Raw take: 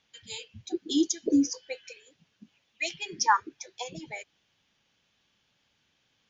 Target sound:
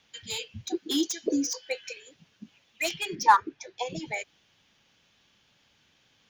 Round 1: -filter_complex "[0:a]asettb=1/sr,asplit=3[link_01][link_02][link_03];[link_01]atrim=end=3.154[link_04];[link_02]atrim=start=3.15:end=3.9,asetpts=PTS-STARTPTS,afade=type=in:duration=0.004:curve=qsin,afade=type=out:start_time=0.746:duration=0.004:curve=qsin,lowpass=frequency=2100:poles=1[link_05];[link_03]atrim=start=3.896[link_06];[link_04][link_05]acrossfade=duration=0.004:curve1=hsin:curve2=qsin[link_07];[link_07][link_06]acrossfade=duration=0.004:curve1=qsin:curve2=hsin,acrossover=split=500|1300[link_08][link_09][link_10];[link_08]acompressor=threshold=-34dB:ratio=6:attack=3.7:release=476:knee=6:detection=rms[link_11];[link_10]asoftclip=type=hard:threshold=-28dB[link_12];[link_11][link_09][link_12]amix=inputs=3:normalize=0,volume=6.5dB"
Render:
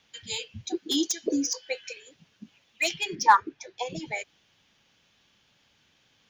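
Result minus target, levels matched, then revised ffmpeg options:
hard clipping: distortion −5 dB
-filter_complex "[0:a]asettb=1/sr,asplit=3[link_01][link_02][link_03];[link_01]atrim=end=3.154[link_04];[link_02]atrim=start=3.15:end=3.9,asetpts=PTS-STARTPTS,afade=type=in:duration=0.004:curve=qsin,afade=type=out:start_time=0.746:duration=0.004:curve=qsin,lowpass=frequency=2100:poles=1[link_05];[link_03]atrim=start=3.896[link_06];[link_04][link_05]acrossfade=duration=0.004:curve1=hsin:curve2=qsin[link_07];[link_07][link_06]acrossfade=duration=0.004:curve1=qsin:curve2=hsin,acrossover=split=500|1300[link_08][link_09][link_10];[link_08]acompressor=threshold=-34dB:ratio=6:attack=3.7:release=476:knee=6:detection=rms[link_11];[link_10]asoftclip=type=hard:threshold=-34dB[link_12];[link_11][link_09][link_12]amix=inputs=3:normalize=0,volume=6.5dB"

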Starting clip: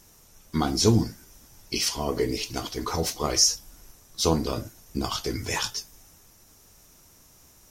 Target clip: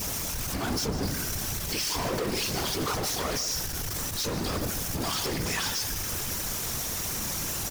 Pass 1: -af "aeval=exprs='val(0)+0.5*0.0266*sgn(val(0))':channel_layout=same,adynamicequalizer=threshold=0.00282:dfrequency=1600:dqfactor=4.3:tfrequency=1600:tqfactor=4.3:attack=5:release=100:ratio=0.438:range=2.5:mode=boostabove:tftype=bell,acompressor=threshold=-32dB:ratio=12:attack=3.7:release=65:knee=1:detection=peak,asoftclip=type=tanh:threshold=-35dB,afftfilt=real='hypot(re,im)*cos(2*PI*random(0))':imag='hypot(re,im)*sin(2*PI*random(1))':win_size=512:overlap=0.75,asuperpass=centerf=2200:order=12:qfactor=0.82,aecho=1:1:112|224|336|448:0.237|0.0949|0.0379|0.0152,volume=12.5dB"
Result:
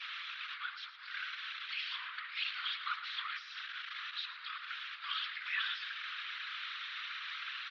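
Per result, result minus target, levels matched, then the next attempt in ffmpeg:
2,000 Hz band +9.0 dB; downward compressor: peak gain reduction +7.5 dB; echo 41 ms early
-af "aeval=exprs='val(0)+0.5*0.0266*sgn(val(0))':channel_layout=same,adynamicequalizer=threshold=0.00282:dfrequency=1600:dqfactor=4.3:tfrequency=1600:tqfactor=4.3:attack=5:release=100:ratio=0.438:range=2.5:mode=boostabove:tftype=bell,acompressor=threshold=-24dB:ratio=12:attack=3.7:release=65:knee=1:detection=peak,asoftclip=type=tanh:threshold=-35dB,afftfilt=real='hypot(re,im)*cos(2*PI*random(0))':imag='hypot(re,im)*sin(2*PI*random(1))':win_size=512:overlap=0.75,aecho=1:1:112|224|336|448:0.237|0.0949|0.0379|0.0152,volume=12.5dB"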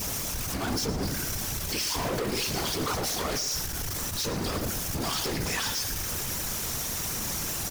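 echo 41 ms early
-af "aeval=exprs='val(0)+0.5*0.0266*sgn(val(0))':channel_layout=same,adynamicequalizer=threshold=0.00282:dfrequency=1600:dqfactor=4.3:tfrequency=1600:tqfactor=4.3:attack=5:release=100:ratio=0.438:range=2.5:mode=boostabove:tftype=bell,acompressor=threshold=-24dB:ratio=12:attack=3.7:release=65:knee=1:detection=peak,asoftclip=type=tanh:threshold=-35dB,afftfilt=real='hypot(re,im)*cos(2*PI*random(0))':imag='hypot(re,im)*sin(2*PI*random(1))':win_size=512:overlap=0.75,aecho=1:1:153|306|459|612:0.237|0.0949|0.0379|0.0152,volume=12.5dB"

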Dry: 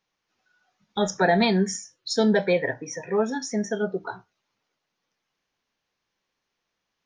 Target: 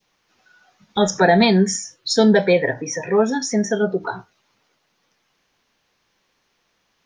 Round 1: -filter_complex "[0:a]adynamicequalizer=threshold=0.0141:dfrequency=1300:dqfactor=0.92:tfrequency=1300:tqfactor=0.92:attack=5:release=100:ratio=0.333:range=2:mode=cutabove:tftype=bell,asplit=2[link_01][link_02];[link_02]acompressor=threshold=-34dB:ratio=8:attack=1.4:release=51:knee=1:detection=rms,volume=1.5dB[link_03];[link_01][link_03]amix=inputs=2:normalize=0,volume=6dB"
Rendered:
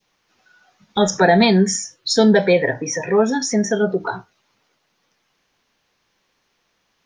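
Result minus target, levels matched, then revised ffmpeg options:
downward compressor: peak gain reduction −8 dB
-filter_complex "[0:a]adynamicequalizer=threshold=0.0141:dfrequency=1300:dqfactor=0.92:tfrequency=1300:tqfactor=0.92:attack=5:release=100:ratio=0.333:range=2:mode=cutabove:tftype=bell,asplit=2[link_01][link_02];[link_02]acompressor=threshold=-43dB:ratio=8:attack=1.4:release=51:knee=1:detection=rms,volume=1.5dB[link_03];[link_01][link_03]amix=inputs=2:normalize=0,volume=6dB"

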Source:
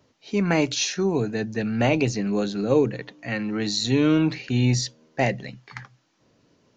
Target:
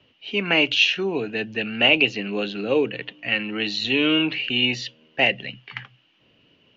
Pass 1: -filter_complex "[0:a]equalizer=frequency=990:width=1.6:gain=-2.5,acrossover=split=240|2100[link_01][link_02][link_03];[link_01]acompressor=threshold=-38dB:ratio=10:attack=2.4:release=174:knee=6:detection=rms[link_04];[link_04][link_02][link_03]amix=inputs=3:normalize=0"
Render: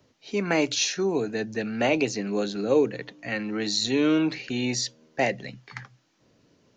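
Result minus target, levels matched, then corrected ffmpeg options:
4,000 Hz band −4.5 dB
-filter_complex "[0:a]lowpass=frequency=2900:width_type=q:width=9.2,equalizer=frequency=990:width=1.6:gain=-2.5,acrossover=split=240|2100[link_01][link_02][link_03];[link_01]acompressor=threshold=-38dB:ratio=10:attack=2.4:release=174:knee=6:detection=rms[link_04];[link_04][link_02][link_03]amix=inputs=3:normalize=0"

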